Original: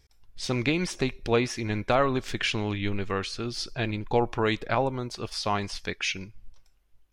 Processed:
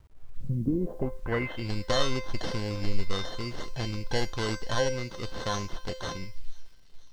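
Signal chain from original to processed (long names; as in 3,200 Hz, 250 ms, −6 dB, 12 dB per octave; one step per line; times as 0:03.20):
low-shelf EQ 230 Hz +9 dB
in parallel at 0 dB: downward compressor 10 to 1, threshold −31 dBFS, peak gain reduction 16.5 dB
on the sum: decimation without filtering 18×
low-pass filter sweep 130 Hz → 4,900 Hz, 0:00.44–0:01.71
tuned comb filter 520 Hz, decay 0.38 s, mix 90%
bit reduction 12 bits
on a send: delay with a high-pass on its return 491 ms, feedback 61%, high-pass 2,800 Hz, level −22 dB
on the sum: level +7.5 dB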